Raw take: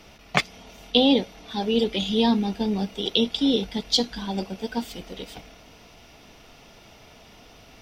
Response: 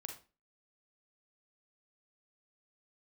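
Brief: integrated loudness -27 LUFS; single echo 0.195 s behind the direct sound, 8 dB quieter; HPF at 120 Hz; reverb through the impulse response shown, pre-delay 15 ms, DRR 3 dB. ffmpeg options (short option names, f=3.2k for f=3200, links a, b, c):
-filter_complex "[0:a]highpass=120,aecho=1:1:195:0.398,asplit=2[a][b];[1:a]atrim=start_sample=2205,adelay=15[c];[b][c]afir=irnorm=-1:irlink=0,volume=0.5dB[d];[a][d]amix=inputs=2:normalize=0,volume=-5dB"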